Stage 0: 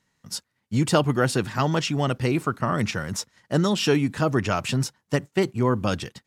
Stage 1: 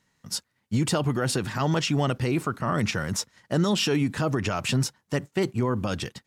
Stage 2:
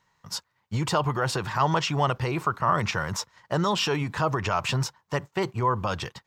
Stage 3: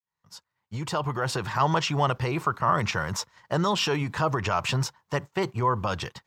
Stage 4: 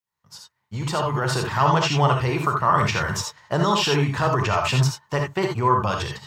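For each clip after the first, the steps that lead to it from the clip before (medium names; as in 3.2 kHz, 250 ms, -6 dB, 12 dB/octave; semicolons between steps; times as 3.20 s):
peak limiter -17 dBFS, peak gain reduction 9.5 dB; trim +1.5 dB
fifteen-band graphic EQ 250 Hz -11 dB, 1 kHz +10 dB, 10 kHz -10 dB
fade-in on the opening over 1.51 s
gated-style reverb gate 100 ms rising, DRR 2 dB; trim +2.5 dB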